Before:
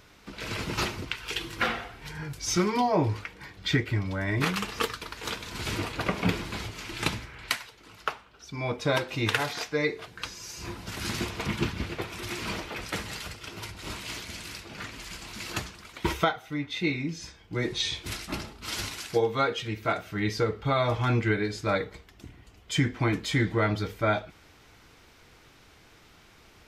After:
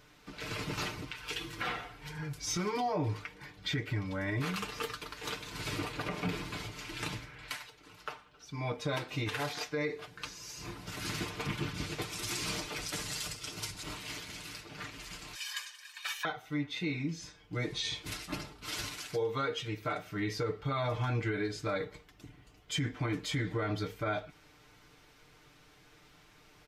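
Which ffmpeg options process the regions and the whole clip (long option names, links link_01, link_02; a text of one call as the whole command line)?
ffmpeg -i in.wav -filter_complex "[0:a]asettb=1/sr,asplit=3[link_01][link_02][link_03];[link_01]atrim=end=11.744[link_04];[link_02]atrim=start=11.74:end=13.83,asetpts=PTS-STARTPTS,afade=type=in:duration=0.004:curve=qsin,afade=type=out:start_time=2.086:duration=0.004:curve=qsin,lowpass=11000,bass=frequency=250:gain=2,treble=frequency=4000:gain=12[link_05];[link_03]atrim=start=13.826[link_06];[link_04][link_05]acrossfade=duration=0.004:curve1=hsin:curve2=qsin[link_07];[link_07][link_06]acrossfade=duration=0.004:curve1=qsin:curve2=hsin,asettb=1/sr,asplit=3[link_08][link_09][link_10];[link_08]atrim=end=15.354[link_11];[link_09]atrim=start=15.35:end=16.25,asetpts=PTS-STARTPTS,afade=type=in:duration=0.004:curve=qsin,afade=type=out:start_time=0.896:duration=0.004:curve=qsin,highpass=920,aecho=1:1:1.5:0.87,atrim=end_sample=39690,afreqshift=370[link_12];[link_10]atrim=start=16.246[link_13];[link_11][link_12]acrossfade=duration=0.004:curve1=hsin:curve2=qsin[link_14];[link_14][link_13]acrossfade=duration=0.004:curve1=qsin:curve2=hsin,aecho=1:1:6.7:0.61,alimiter=limit=-18.5dB:level=0:latency=1:release=51,volume=-6dB" out.wav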